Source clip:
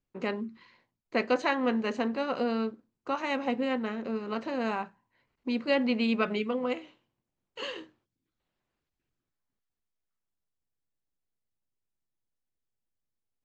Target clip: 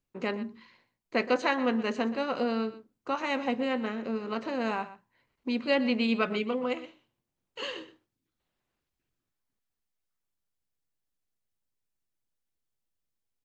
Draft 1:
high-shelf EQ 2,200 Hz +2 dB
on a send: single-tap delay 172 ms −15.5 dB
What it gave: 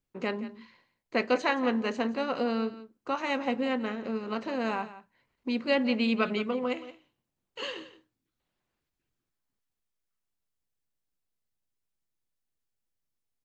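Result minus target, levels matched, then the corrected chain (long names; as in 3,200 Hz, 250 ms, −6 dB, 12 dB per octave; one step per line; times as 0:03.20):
echo 50 ms late
high-shelf EQ 2,200 Hz +2 dB
on a send: single-tap delay 122 ms −15.5 dB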